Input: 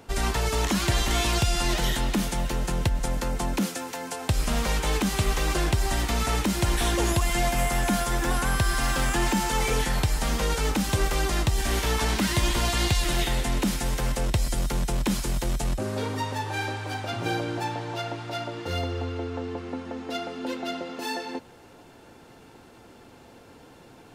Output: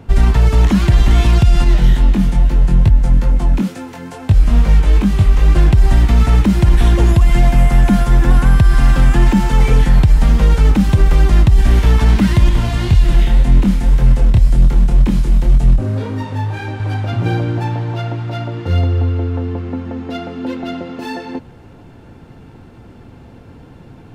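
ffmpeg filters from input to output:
-filter_complex "[0:a]asettb=1/sr,asplit=3[s0][s1][s2];[s0]atrim=end=1.644[s3];[s1]atrim=start=1.64:end=5.56,asetpts=PTS-STARTPTS,afade=t=in:d=0.004:c=qsin,afade=t=out:st=3.916:d=0.004:c=qsin,flanger=delay=19.5:depth=3:speed=2.3[s4];[s2]atrim=start=5.556[s5];[s3][s4]acrossfade=d=0.004:c1=hsin:c2=qsin[s6];[s6][s5]acrossfade=d=0.004:c1=qsin:c2=hsin,asettb=1/sr,asplit=3[s7][s8][s9];[s7]atrim=end=12.494[s10];[s8]atrim=start=12.49:end=16.8,asetpts=PTS-STARTPTS,afade=t=in:d=0.004:c=qsin,afade=t=out:st=4.306:d=0.004:c=qsin,flanger=delay=22.5:depth=5:speed=1.9[s11];[s9]atrim=start=16.796[s12];[s10][s11]acrossfade=d=0.004:c1=hsin:c2=qsin[s13];[s13][s12]acrossfade=d=0.004:c1=qsin:c2=hsin,bass=f=250:g=14,treble=f=4000:g=-9,alimiter=level_in=1.88:limit=0.891:release=50:level=0:latency=1,volume=0.891"

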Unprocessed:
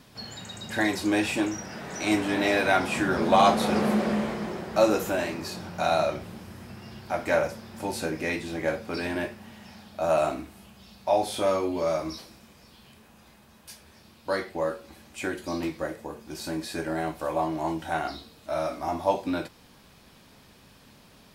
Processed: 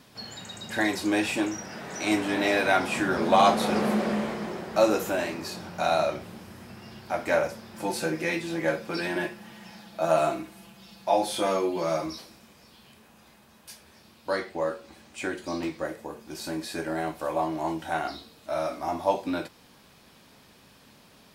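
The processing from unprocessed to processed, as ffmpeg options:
-filter_complex "[0:a]asettb=1/sr,asplit=3[s0][s1][s2];[s0]atrim=end=7.754[s3];[s1]atrim=start=7.75:end=12.06,asetpts=PTS-STARTPTS,afade=t=in:d=0.004:c=qsin,afade=t=out:st=4.306:d=0.004:c=qsin,aecho=1:1:5.9:0.73,atrim=end_sample=190071[s4];[s2]atrim=start=12.056[s5];[s3][s4]acrossfade=d=0.004:c1=hsin:c2=qsin[s6];[s6][s5]acrossfade=d=0.004:c1=qsin:c2=hsin,asettb=1/sr,asplit=3[s7][s8][s9];[s7]atrim=end=14.314[s10];[s8]atrim=start=14.31:end=15.85,asetpts=PTS-STARTPTS,afade=t=in:d=0.004:c=qsin,afade=t=out:st=1.536:d=0.004:c=qsin,equalizer=f=12000:t=o:w=0.21:g=-15[s11];[s9]atrim=start=15.846[s12];[s10][s11]acrossfade=d=0.004:c1=hsin:c2=qsin[s13];[s13][s12]acrossfade=d=0.004:c1=qsin:c2=hsin,lowshelf=f=100:g=-8.5"

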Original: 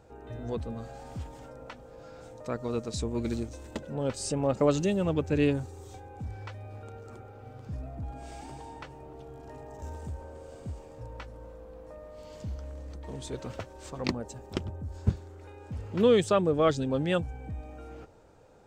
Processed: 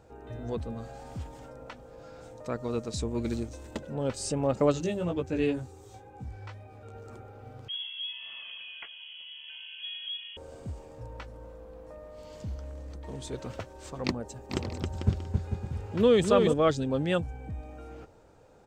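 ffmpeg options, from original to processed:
-filter_complex "[0:a]asettb=1/sr,asplit=3[s0][s1][s2];[s0]atrim=end=4.724[s3];[s1]atrim=start=4.72:end=6.95,asetpts=PTS-STARTPTS,afade=t=in:d=0.004:c=qsin,afade=t=out:st=2.226:d=0.004:c=qsin,flanger=delay=15.5:depth=2.8:speed=2[s4];[s2]atrim=start=6.946[s5];[s3][s4]acrossfade=d=0.004:c1=hsin:c2=qsin[s6];[s6][s5]acrossfade=d=0.004:c1=qsin:c2=hsin,asettb=1/sr,asplit=3[s7][s8][s9];[s7]atrim=end=7.684[s10];[s8]atrim=start=7.68:end=10.37,asetpts=PTS-STARTPTS,afade=t=in:d=0.004:c=qsin,afade=t=out:st=2.686:d=0.004:c=qsin,lowpass=f=2900:t=q:w=0.5098,lowpass=f=2900:t=q:w=0.6013,lowpass=f=2900:t=q:w=0.9,lowpass=f=2900:t=q:w=2.563,afreqshift=-3400[s11];[s9]atrim=start=10.366[s12];[s10][s11]acrossfade=d=0.004:c1=hsin:c2=qsin[s13];[s13][s12]acrossfade=d=0.004:c1=qsin:c2=hsin,asplit=3[s14][s15][s16];[s14]afade=t=out:st=14.49:d=0.02[s17];[s15]aecho=1:1:270|445.5|559.6|633.7|681.9:0.631|0.398|0.251|0.158|0.1,afade=t=in:st=14.49:d=0.02,afade=t=out:st=16.52:d=0.02[s18];[s16]afade=t=in:st=16.52:d=0.02[s19];[s17][s18][s19]amix=inputs=3:normalize=0"

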